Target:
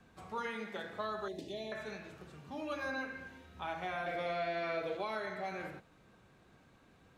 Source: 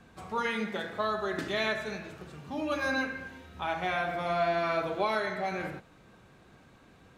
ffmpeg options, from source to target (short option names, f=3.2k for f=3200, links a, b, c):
-filter_complex "[0:a]asettb=1/sr,asplit=3[a][b][c];[a]atrim=end=4.064[d];[b]atrim=start=4.06:end=4.97,asetpts=PTS-STARTPTS,afade=t=in:d=0.004:c=qsin,afade=t=out:st=0.906:d=0.004:c=qsin,equalizer=f=500:t=o:w=1:g=10,equalizer=f=1k:t=o:w=1:g=-7,equalizer=f=2k:t=o:w=1:g=9,equalizer=f=4k:t=o:w=1:g=6[e];[c]atrim=start=4.966[f];[d][e]acrossfade=d=0.004:c1=hsin:c2=qsin[g];[g][f]acrossfade=d=0.004:c1=qsin:c2=hsin,acrossover=split=330|1700|5400[h][i][j][k];[h]acompressor=threshold=-42dB:ratio=4[l];[i]acompressor=threshold=-29dB:ratio=4[m];[j]acompressor=threshold=-41dB:ratio=4[n];[k]acompressor=threshold=-59dB:ratio=4[o];[l][m][n][o]amix=inputs=4:normalize=0,asettb=1/sr,asplit=3[p][q][r];[p]atrim=end=1.284[s];[q]atrim=start=1.28:end=1.72,asetpts=PTS-STARTPTS,afade=t=in:d=0.004:c=qsin,afade=t=out:st=0.436:d=0.004:c=qsin,asuperstop=centerf=1400:order=4:qfactor=0.58[t];[r]atrim=start=1.716[u];[s][t]acrossfade=d=0.004:c1=hsin:c2=qsin[v];[v][u]acrossfade=d=0.004:c1=qsin:c2=hsin,volume=-6.5dB"